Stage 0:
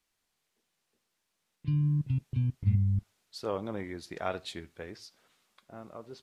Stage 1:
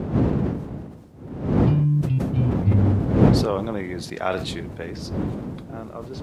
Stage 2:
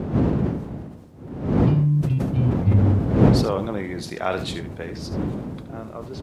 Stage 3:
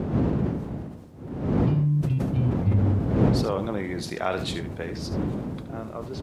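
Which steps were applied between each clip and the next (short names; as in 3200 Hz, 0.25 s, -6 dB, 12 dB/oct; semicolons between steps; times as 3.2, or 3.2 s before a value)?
wind noise 220 Hz -32 dBFS; HPF 79 Hz; sustainer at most 55 dB/s; gain +8.5 dB
echo 73 ms -12 dB
compressor 1.5:1, threshold -25 dBFS, peak gain reduction 6 dB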